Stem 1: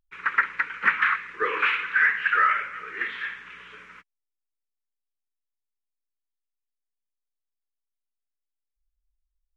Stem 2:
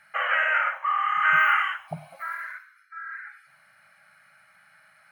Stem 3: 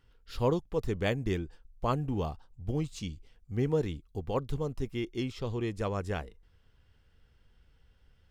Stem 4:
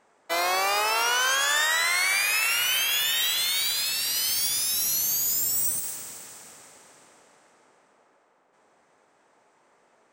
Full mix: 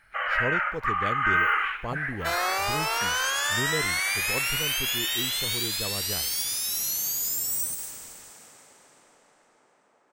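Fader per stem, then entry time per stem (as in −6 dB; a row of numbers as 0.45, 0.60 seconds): −12.0, −3.0, −3.5, −3.0 decibels; 0.00, 0.00, 0.00, 1.95 seconds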